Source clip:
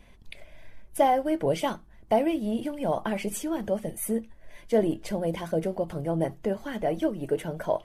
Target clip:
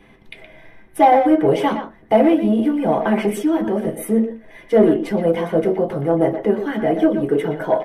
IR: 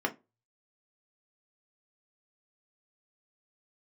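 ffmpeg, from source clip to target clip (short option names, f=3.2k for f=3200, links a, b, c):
-filter_complex "[0:a]asplit=2[a][b];[b]adelay=120,highpass=300,lowpass=3.4k,asoftclip=type=hard:threshold=-19.5dB,volume=-8dB[c];[a][c]amix=inputs=2:normalize=0[d];[1:a]atrim=start_sample=2205[e];[d][e]afir=irnorm=-1:irlink=0,aeval=exprs='0.841*(cos(1*acos(clip(val(0)/0.841,-1,1)))-cos(1*PI/2))+0.0376*(cos(5*acos(clip(val(0)/0.841,-1,1)))-cos(5*PI/2))':c=same"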